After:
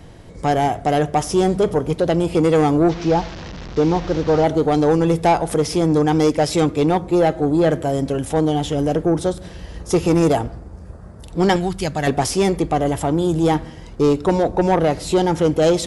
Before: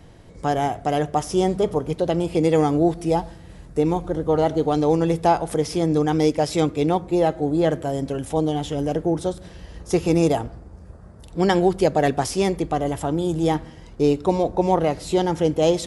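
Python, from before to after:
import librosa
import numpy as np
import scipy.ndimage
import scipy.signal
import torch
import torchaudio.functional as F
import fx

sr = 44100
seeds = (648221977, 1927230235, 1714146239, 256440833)

y = fx.delta_mod(x, sr, bps=32000, step_db=-32.0, at=(2.89, 4.44))
y = fx.peak_eq(y, sr, hz=470.0, db=-14.0, octaves=1.7, at=(11.56, 12.07))
y = 10.0 ** (-14.0 / 20.0) * np.tanh(y / 10.0 ** (-14.0 / 20.0))
y = y * librosa.db_to_amplitude(5.5)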